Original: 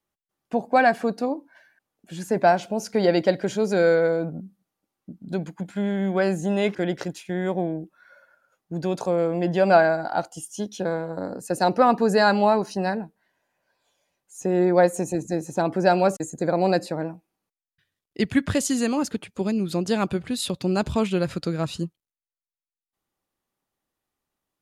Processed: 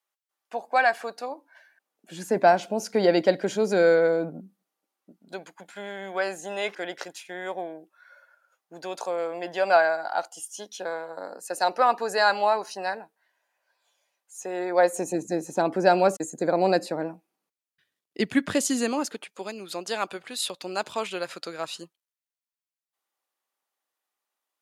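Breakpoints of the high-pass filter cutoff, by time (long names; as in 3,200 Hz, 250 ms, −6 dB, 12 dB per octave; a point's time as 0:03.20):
0:01.32 760 Hz
0:02.26 220 Hz
0:04.21 220 Hz
0:05.44 670 Hz
0:14.68 670 Hz
0:15.13 240 Hz
0:18.77 240 Hz
0:19.33 640 Hz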